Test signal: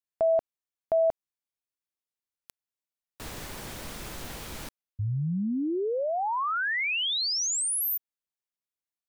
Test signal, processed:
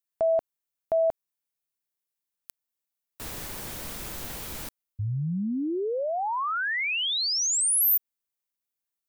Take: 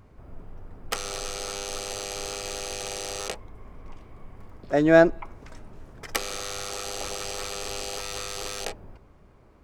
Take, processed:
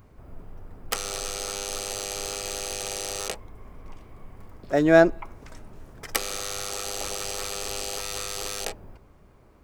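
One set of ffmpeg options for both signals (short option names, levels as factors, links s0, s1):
-af "highshelf=f=9800:g=10"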